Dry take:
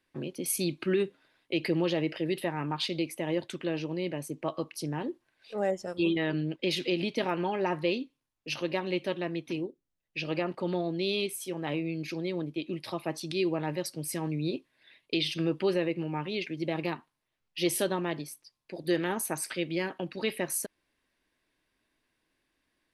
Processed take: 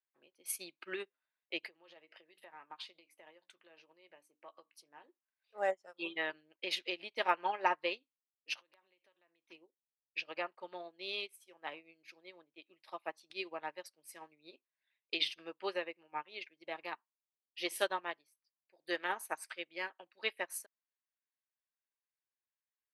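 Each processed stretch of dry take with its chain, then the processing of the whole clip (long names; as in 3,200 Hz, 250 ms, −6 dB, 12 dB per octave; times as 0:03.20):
0:01.58–0:05.09: mains-hum notches 60/120/180/240/300 Hz + double-tracking delay 17 ms −13 dB + downward compressor 12 to 1, threshold −31 dBFS
0:08.60–0:09.50: downward compressor 12 to 1, threshold −38 dBFS + wrap-around overflow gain 30 dB
whole clip: high-pass filter 980 Hz 12 dB per octave; high-shelf EQ 2,300 Hz −11 dB; expander for the loud parts 2.5 to 1, over −54 dBFS; level +10 dB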